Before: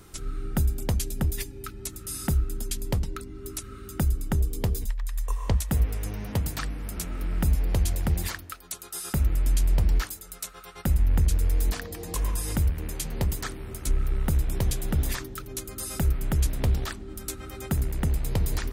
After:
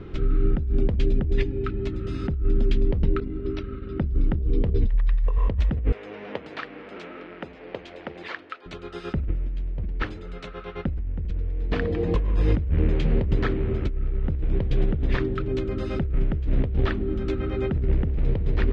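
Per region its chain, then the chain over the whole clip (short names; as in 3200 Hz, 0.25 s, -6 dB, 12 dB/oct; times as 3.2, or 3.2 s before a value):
3.2–5.38 expander -37 dBFS + brick-wall FIR low-pass 6000 Hz + notches 50/100/150/200/250/300/350/400/450 Hz
5.92–8.66 compressor 2:1, threshold -31 dBFS + HPF 560 Hz
whole clip: LPF 3100 Hz 24 dB/oct; resonant low shelf 620 Hz +6.5 dB, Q 1.5; negative-ratio compressor -23 dBFS, ratio -1; gain +1.5 dB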